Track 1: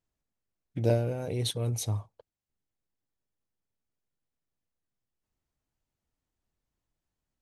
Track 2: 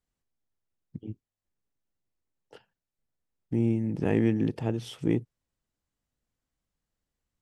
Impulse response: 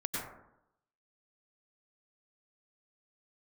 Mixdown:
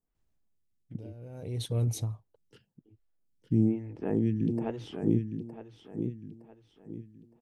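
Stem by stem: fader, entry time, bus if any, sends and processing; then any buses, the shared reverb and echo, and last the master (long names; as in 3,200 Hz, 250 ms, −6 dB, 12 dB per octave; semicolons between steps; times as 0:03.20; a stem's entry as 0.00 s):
−3.0 dB, 0.15 s, no send, no echo send, downward compressor, threshold −30 dBFS, peak gain reduction 10 dB; automatic ducking −18 dB, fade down 0.65 s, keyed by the second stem
−4.0 dB, 0.00 s, no send, echo send −7 dB, notch filter 540 Hz, Q 16; phaser with staggered stages 1.1 Hz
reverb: not used
echo: repeating echo 914 ms, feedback 35%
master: low-shelf EQ 360 Hz +8.5 dB; speech leveller 0.5 s; wow of a warped record 45 rpm, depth 100 cents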